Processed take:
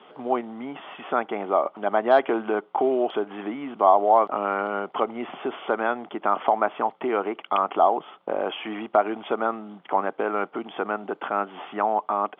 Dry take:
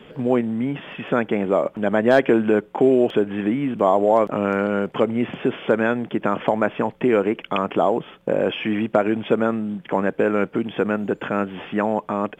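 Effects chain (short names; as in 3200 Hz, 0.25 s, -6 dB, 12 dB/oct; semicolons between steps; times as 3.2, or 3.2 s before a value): speaker cabinet 480–3400 Hz, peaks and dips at 510 Hz -8 dB, 770 Hz +6 dB, 1200 Hz +5 dB, 1700 Hz -9 dB, 2500 Hz -8 dB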